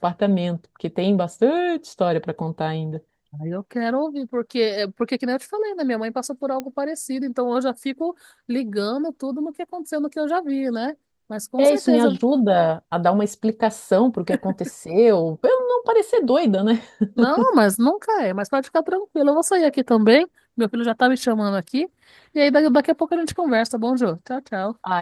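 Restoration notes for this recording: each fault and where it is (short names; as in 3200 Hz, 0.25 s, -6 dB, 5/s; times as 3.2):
6.6 pop -14 dBFS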